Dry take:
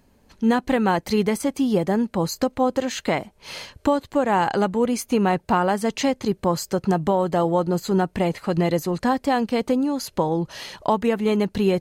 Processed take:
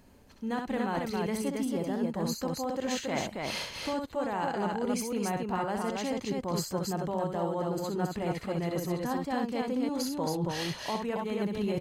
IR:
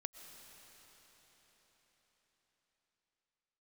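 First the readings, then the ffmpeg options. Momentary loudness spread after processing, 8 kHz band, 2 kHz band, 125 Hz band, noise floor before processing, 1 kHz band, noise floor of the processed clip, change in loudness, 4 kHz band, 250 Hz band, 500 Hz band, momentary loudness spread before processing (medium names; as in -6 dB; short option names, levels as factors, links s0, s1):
2 LU, -5.0 dB, -9.0 dB, -8.5 dB, -59 dBFS, -10.5 dB, -47 dBFS, -10.0 dB, -5.5 dB, -10.0 dB, -10.5 dB, 4 LU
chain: -af "areverse,acompressor=threshold=0.0316:ratio=10,areverse,aecho=1:1:64.14|274.1:0.562|0.708"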